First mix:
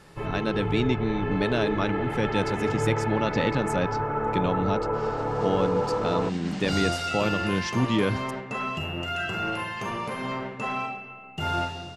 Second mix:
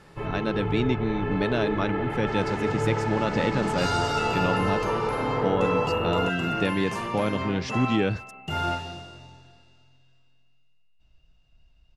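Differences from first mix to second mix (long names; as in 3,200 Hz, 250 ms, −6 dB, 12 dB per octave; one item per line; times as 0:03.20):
speech: add high-shelf EQ 5,000 Hz −6 dB
second sound: entry −2.90 s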